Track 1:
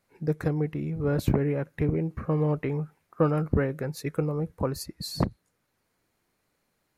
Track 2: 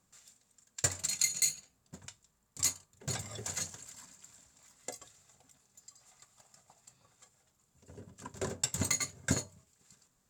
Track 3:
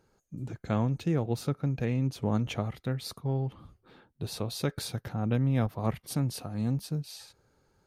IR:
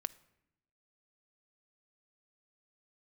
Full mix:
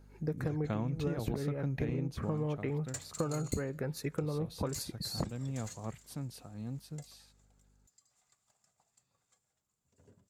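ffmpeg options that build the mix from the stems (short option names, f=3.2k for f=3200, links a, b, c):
-filter_complex "[0:a]volume=-6dB,asplit=2[a][b];[b]volume=-8.5dB[c];[1:a]adelay=2100,volume=-12dB[d];[2:a]aeval=exprs='val(0)+0.00178*(sin(2*PI*50*n/s)+sin(2*PI*2*50*n/s)/2+sin(2*PI*3*50*n/s)/3+sin(2*PI*4*50*n/s)/4+sin(2*PI*5*50*n/s)/5)':c=same,volume=-1dB,afade=t=out:st=1.99:d=0.35:silence=0.298538[e];[3:a]atrim=start_sample=2205[f];[c][f]afir=irnorm=-1:irlink=0[g];[a][d][e][g]amix=inputs=4:normalize=0,acompressor=threshold=-30dB:ratio=12"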